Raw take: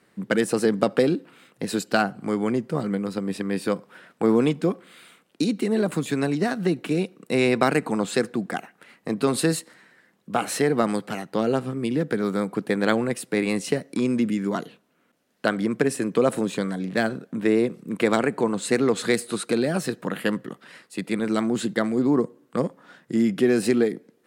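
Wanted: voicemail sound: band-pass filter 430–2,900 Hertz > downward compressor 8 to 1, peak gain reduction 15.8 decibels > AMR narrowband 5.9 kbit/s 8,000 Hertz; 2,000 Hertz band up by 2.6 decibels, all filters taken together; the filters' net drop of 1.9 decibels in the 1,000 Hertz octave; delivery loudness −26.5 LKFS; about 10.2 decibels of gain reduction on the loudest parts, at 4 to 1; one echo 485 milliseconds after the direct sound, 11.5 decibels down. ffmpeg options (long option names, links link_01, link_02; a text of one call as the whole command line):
ffmpeg -i in.wav -af "equalizer=frequency=1000:width_type=o:gain=-4,equalizer=frequency=2000:width_type=o:gain=5.5,acompressor=threshold=-28dB:ratio=4,highpass=430,lowpass=2900,aecho=1:1:485:0.266,acompressor=threshold=-42dB:ratio=8,volume=22dB" -ar 8000 -c:a libopencore_amrnb -b:a 5900 out.amr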